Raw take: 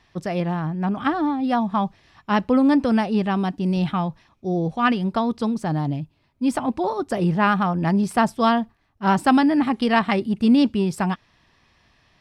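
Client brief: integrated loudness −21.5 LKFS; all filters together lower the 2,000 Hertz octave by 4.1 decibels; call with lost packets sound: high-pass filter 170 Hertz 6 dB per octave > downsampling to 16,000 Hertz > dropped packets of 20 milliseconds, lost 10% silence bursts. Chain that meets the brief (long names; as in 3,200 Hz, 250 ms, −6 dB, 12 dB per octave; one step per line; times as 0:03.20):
high-pass filter 170 Hz 6 dB per octave
parametric band 2,000 Hz −5.5 dB
downsampling to 16,000 Hz
dropped packets of 20 ms, lost 10% silence bursts
level +2.5 dB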